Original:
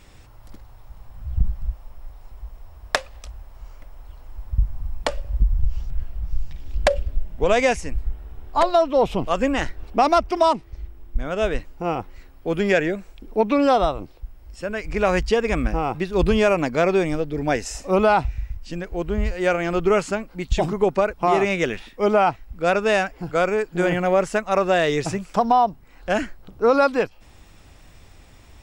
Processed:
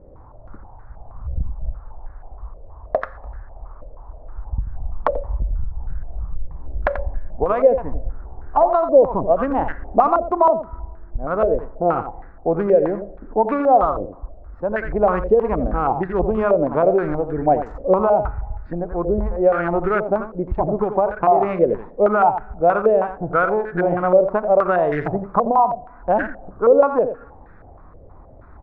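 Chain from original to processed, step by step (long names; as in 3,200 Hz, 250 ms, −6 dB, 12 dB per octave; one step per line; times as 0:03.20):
adaptive Wiener filter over 15 samples
downward compressor, threshold −21 dBFS, peak gain reduction 10 dB
single-tap delay 87 ms −9.5 dB
on a send at −19 dB: convolution reverb RT60 1.3 s, pre-delay 13 ms
on the sum: low-pass on a step sequencer 6.3 Hz 540–1,600 Hz
level +2.5 dB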